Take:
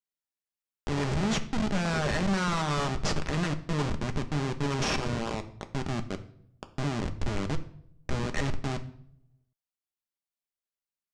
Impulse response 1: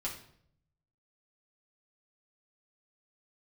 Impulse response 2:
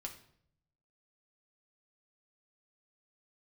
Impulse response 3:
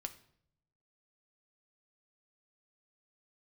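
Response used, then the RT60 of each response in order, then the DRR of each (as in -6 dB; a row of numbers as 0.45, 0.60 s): 3; 0.65, 0.65, 0.65 s; -5.0, 1.0, 6.5 dB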